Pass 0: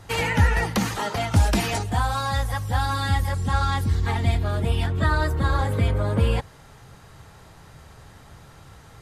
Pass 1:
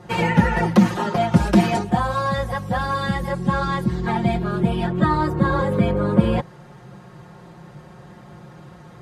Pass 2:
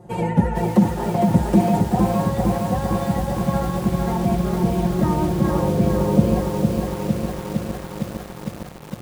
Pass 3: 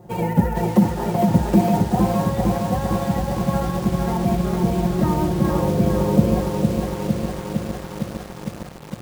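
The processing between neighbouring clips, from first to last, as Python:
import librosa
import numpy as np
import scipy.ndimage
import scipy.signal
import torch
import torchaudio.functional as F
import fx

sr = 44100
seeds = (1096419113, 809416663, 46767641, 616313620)

y1 = scipy.signal.sosfilt(scipy.signal.butter(2, 190.0, 'highpass', fs=sr, output='sos'), x)
y1 = fx.tilt_eq(y1, sr, slope=-3.5)
y1 = y1 + 0.88 * np.pad(y1, (int(5.6 * sr / 1000.0), 0))[:len(y1)]
y1 = y1 * librosa.db_to_amplitude(1.5)
y2 = fx.self_delay(y1, sr, depth_ms=0.066)
y2 = fx.band_shelf(y2, sr, hz=2600.0, db=-12.0, octaves=2.7)
y2 = fx.echo_crushed(y2, sr, ms=457, feedback_pct=80, bits=6, wet_db=-4)
y2 = y2 * librosa.db_to_amplitude(-1.0)
y3 = fx.sample_hold(y2, sr, seeds[0], rate_hz=16000.0, jitter_pct=20)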